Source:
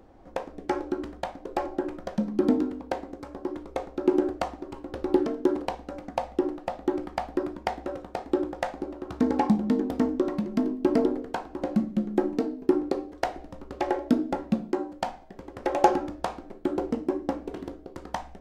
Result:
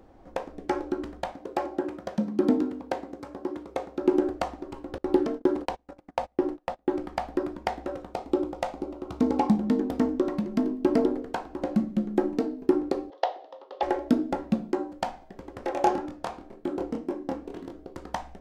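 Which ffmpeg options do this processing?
ffmpeg -i in.wav -filter_complex "[0:a]asettb=1/sr,asplit=3[link_01][link_02][link_03];[link_01]atrim=end=1.324[link_04];[link_02]atrim=start=1.32:end=4.01,asetpts=PTS-STARTPTS,afade=type=in:duration=0.004:curve=qsin,afade=type=out:start_time=2.686:duration=0.004:curve=qsin,highpass=85[link_05];[link_03]atrim=start=4.006[link_06];[link_04][link_05]acrossfade=duration=0.004:curve1=hsin:curve2=qsin[link_07];[link_07][link_06]acrossfade=duration=0.004:curve1=qsin:curve2=hsin,asettb=1/sr,asplit=3[link_08][link_09][link_10];[link_08]atrim=end=4.984[link_11];[link_09]atrim=start=4.98:end=7.04,asetpts=PTS-STARTPTS,afade=type=in:duration=0.004:curve=qsin,afade=type=out:start_time=2.056:duration=0.004:curve=qsin,agate=range=-26dB:threshold=-36dB:ratio=16:release=100:detection=peak[link_12];[link_10]atrim=start=7.036[link_13];[link_11][link_12]acrossfade=duration=0.004:curve1=hsin:curve2=qsin[link_14];[link_14][link_13]acrossfade=duration=0.004:curve1=qsin:curve2=hsin,asettb=1/sr,asplit=3[link_15][link_16][link_17];[link_15]atrim=end=8.134[link_18];[link_16]atrim=start=8.13:end=9.49,asetpts=PTS-STARTPTS,afade=type=in:duration=0.004:curve=qsin,afade=type=out:start_time=1.356:duration=0.004:curve=qsin,equalizer=frequency=1700:width=5:gain=-11[link_19];[link_17]atrim=start=9.486[link_20];[link_18][link_19]acrossfade=duration=0.004:curve1=hsin:curve2=qsin[link_21];[link_21][link_20]acrossfade=duration=0.004:curve1=qsin:curve2=hsin,asettb=1/sr,asplit=3[link_22][link_23][link_24];[link_22]atrim=end=13.104[link_25];[link_23]atrim=start=13.1:end=13.83,asetpts=PTS-STARTPTS,afade=type=in:duration=0.004:curve=qsin,afade=type=out:start_time=0.726:duration=0.004:curve=qsin,highpass=frequency=480:width=0.5412,highpass=frequency=480:width=1.3066,equalizer=frequency=520:width_type=q:width=4:gain=5,equalizer=frequency=840:width_type=q:width=4:gain=4,equalizer=frequency=1500:width_type=q:width=4:gain=-8,equalizer=frequency=2300:width_type=q:width=4:gain=-8,equalizer=frequency=3400:width_type=q:width=4:gain=6,lowpass=frequency=4700:width=0.5412,lowpass=frequency=4700:width=1.3066[link_26];[link_24]atrim=start=13.826[link_27];[link_25][link_26]acrossfade=duration=0.004:curve1=hsin:curve2=qsin[link_28];[link_28][link_27]acrossfade=duration=0.004:curve1=qsin:curve2=hsin,asettb=1/sr,asplit=3[link_29][link_30][link_31];[link_29]atrim=end=15.654[link_32];[link_30]atrim=start=15.65:end=17.75,asetpts=PTS-STARTPTS,afade=type=in:duration=0.004:curve=qsin,afade=type=out:start_time=2.096:duration=0.004:curve=qsin,flanger=delay=22.5:depth=5:speed=2[link_33];[link_31]atrim=start=17.746[link_34];[link_32][link_33]acrossfade=duration=0.004:curve1=hsin:curve2=qsin[link_35];[link_35][link_34]acrossfade=duration=0.004:curve1=qsin:curve2=hsin" out.wav

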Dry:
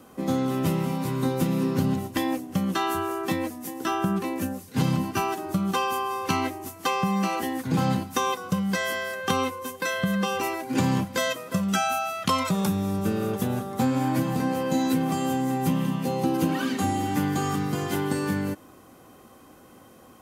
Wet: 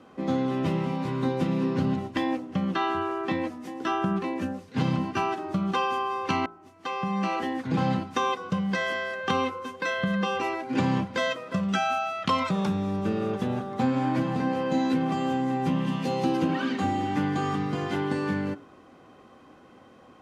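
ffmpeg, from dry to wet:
ffmpeg -i in.wav -filter_complex "[0:a]asettb=1/sr,asplit=3[link_01][link_02][link_03];[link_01]atrim=end=2.374[link_04];[link_02]atrim=start=2.37:end=3.39,asetpts=PTS-STARTPTS,afade=type=in:duration=0.004:curve=qsin,afade=type=out:start_time=1.016:duration=0.004:curve=qsin,acrossover=split=4800[link_05][link_06];[link_06]acompressor=threshold=-47dB:ratio=4:attack=1:release=60[link_07];[link_05][link_07]amix=inputs=2:normalize=0[link_08];[link_03]atrim=start=3.386[link_09];[link_04][link_08]acrossfade=duration=0.004:curve1=hsin:curve2=qsin[link_10];[link_10][link_09]acrossfade=duration=0.004:curve1=qsin:curve2=hsin,asplit=3[link_11][link_12][link_13];[link_11]afade=type=out:start_time=15.86:duration=0.02[link_14];[link_12]highshelf=frequency=3100:gain=10,afade=type=in:start_time=15.86:duration=0.02,afade=type=out:start_time=16.38:duration=0.02[link_15];[link_13]afade=type=in:start_time=16.38:duration=0.02[link_16];[link_14][link_15][link_16]amix=inputs=3:normalize=0,asplit=2[link_17][link_18];[link_17]atrim=end=6.46,asetpts=PTS-STARTPTS,afade=type=out:start_time=6.456:duration=0.004:curve=hsin[link_19];[link_18]atrim=start=6.46,asetpts=PTS-STARTPTS,afade=type=in:duration=0.87[link_20];[link_19][link_20]concat=n=2:v=0:a=1,lowpass=3700,lowshelf=frequency=110:gain=-6,bandreject=frequency=57.03:width_type=h:width=4,bandreject=frequency=114.06:width_type=h:width=4,bandreject=frequency=171.09:width_type=h:width=4,bandreject=frequency=228.12:width_type=h:width=4,bandreject=frequency=285.15:width_type=h:width=4,bandreject=frequency=342.18:width_type=h:width=4,bandreject=frequency=399.21:width_type=h:width=4,bandreject=frequency=456.24:width_type=h:width=4,bandreject=frequency=513.27:width_type=h:width=4,bandreject=frequency=570.3:width_type=h:width=4,bandreject=frequency=627.33:width_type=h:width=4,bandreject=frequency=684.36:width_type=h:width=4,bandreject=frequency=741.39:width_type=h:width=4,bandreject=frequency=798.42:width_type=h:width=4,bandreject=frequency=855.45:width_type=h:width=4,bandreject=frequency=912.48:width_type=h:width=4,bandreject=frequency=969.51:width_type=h:width=4,bandreject=frequency=1026.54:width_type=h:width=4,bandreject=frequency=1083.57:width_type=h:width=4,bandreject=frequency=1140.6:width_type=h:width=4,bandreject=frequency=1197.63:width_type=h:width=4,bandreject=frequency=1254.66:width_type=h:width=4,bandreject=frequency=1311.69:width_type=h:width=4,bandreject=frequency=1368.72:width_type=h:width=4,bandreject=frequency=1425.75:width_type=h:width=4,bandreject=frequency=1482.78:width_type=h:width=4,bandreject=frequency=1539.81:width_type=h:width=4" out.wav

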